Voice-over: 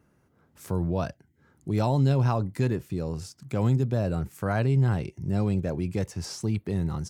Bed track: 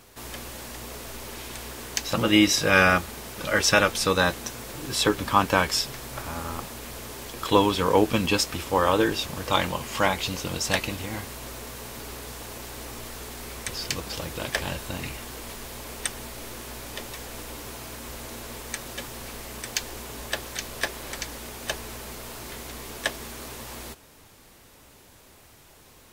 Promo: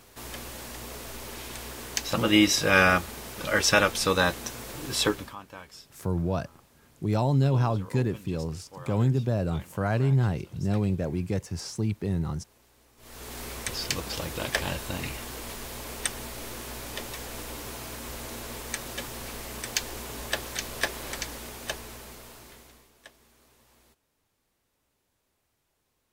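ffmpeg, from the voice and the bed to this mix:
-filter_complex "[0:a]adelay=5350,volume=-0.5dB[a];[1:a]volume=21.5dB,afade=t=out:st=5.02:d=0.34:silence=0.0841395,afade=t=in:st=12.97:d=0.41:silence=0.0707946,afade=t=out:st=21.09:d=1.81:silence=0.0707946[b];[a][b]amix=inputs=2:normalize=0"

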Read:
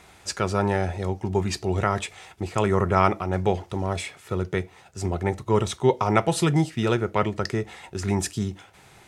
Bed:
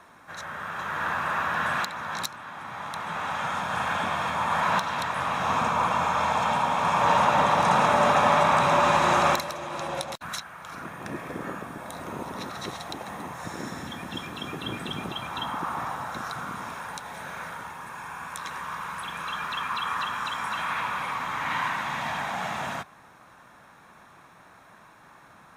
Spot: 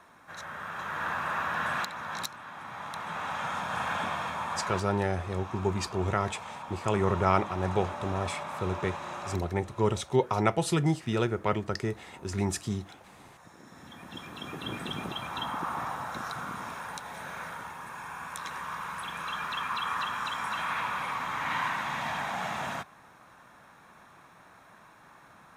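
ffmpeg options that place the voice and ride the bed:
-filter_complex "[0:a]adelay=4300,volume=-5dB[a];[1:a]volume=11dB,afade=t=out:st=4.03:d=0.97:silence=0.211349,afade=t=in:st=13.65:d=1.17:silence=0.177828[b];[a][b]amix=inputs=2:normalize=0"

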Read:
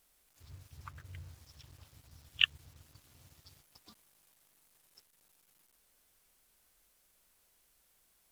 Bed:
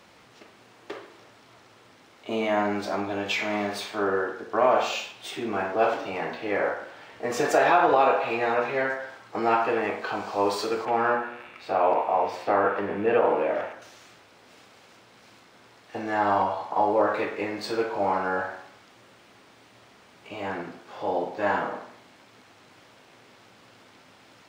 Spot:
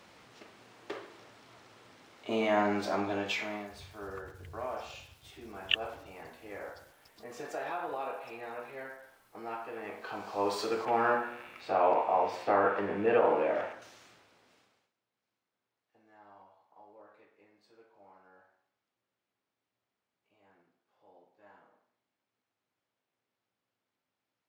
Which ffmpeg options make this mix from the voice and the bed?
-filter_complex "[0:a]adelay=3300,volume=-1.5dB[a];[1:a]volume=10.5dB,afade=t=out:st=3.11:d=0.58:silence=0.188365,afade=t=in:st=9.72:d=1.11:silence=0.211349,afade=t=out:st=13.72:d=1.2:silence=0.0316228[b];[a][b]amix=inputs=2:normalize=0"

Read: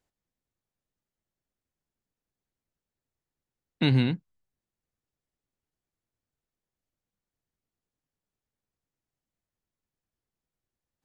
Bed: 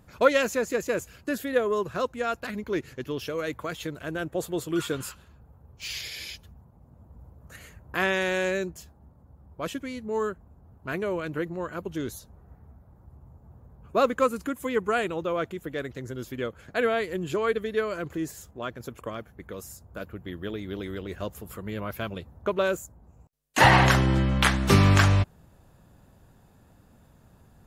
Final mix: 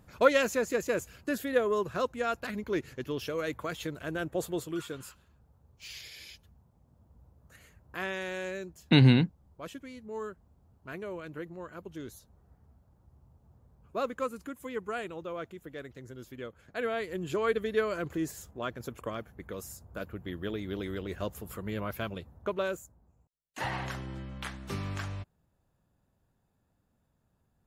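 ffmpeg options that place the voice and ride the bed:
-filter_complex "[0:a]adelay=5100,volume=3dB[a];[1:a]volume=6dB,afade=t=out:st=4.49:d=0.34:silence=0.421697,afade=t=in:st=16.68:d=1.01:silence=0.375837,afade=t=out:st=21.76:d=1.62:silence=0.149624[b];[a][b]amix=inputs=2:normalize=0"

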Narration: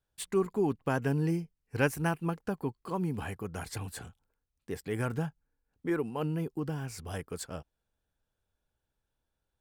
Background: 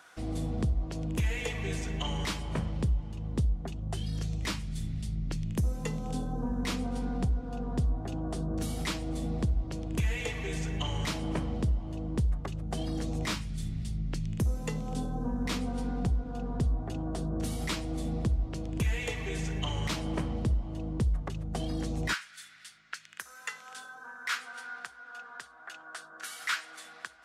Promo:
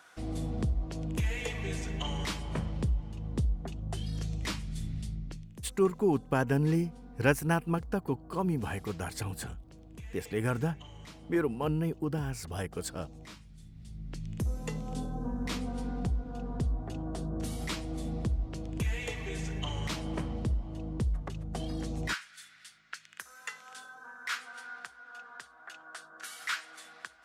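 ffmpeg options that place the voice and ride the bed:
-filter_complex "[0:a]adelay=5450,volume=2dB[a];[1:a]volume=12.5dB,afade=t=out:st=5.01:d=0.48:silence=0.177828,afade=t=in:st=13.73:d=0.83:silence=0.199526[b];[a][b]amix=inputs=2:normalize=0"

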